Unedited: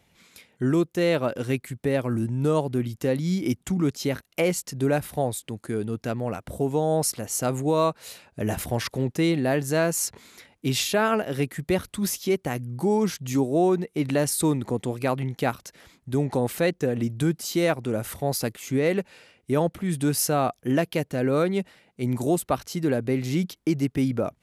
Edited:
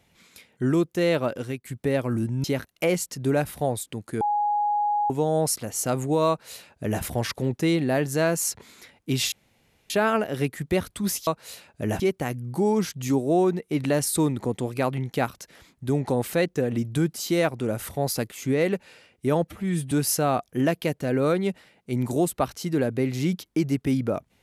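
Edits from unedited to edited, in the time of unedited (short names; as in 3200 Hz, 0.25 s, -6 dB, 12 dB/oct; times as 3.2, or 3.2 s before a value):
1.17–1.65 fade out equal-power, to -15.5 dB
2.44–4 cut
5.77–6.66 bleep 830 Hz -20.5 dBFS
7.85–8.58 copy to 12.25
10.88 insert room tone 0.58 s
19.73–20.02 stretch 1.5×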